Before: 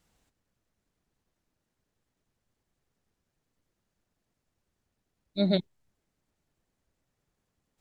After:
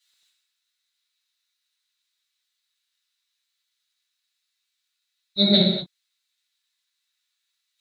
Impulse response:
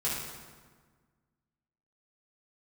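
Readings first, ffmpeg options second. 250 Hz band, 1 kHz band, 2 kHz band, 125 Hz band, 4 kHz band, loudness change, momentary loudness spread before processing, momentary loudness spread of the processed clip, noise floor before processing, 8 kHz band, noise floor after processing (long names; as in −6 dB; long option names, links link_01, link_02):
+7.5 dB, +6.5 dB, +7.5 dB, +7.0 dB, +18.0 dB, +9.0 dB, 8 LU, 13 LU, −83 dBFS, can't be measured, −79 dBFS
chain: -filter_complex "[1:a]atrim=start_sample=2205,afade=type=out:start_time=0.31:duration=0.01,atrim=end_sample=14112[link_01];[0:a][link_01]afir=irnorm=-1:irlink=0,acrossover=split=1600[link_02][link_03];[link_02]aeval=exprs='sgn(val(0))*max(abs(val(0))-0.00168,0)':channel_layout=same[link_04];[link_04][link_03]amix=inputs=2:normalize=0,equalizer=frequency=3900:width_type=o:width=0.39:gain=14"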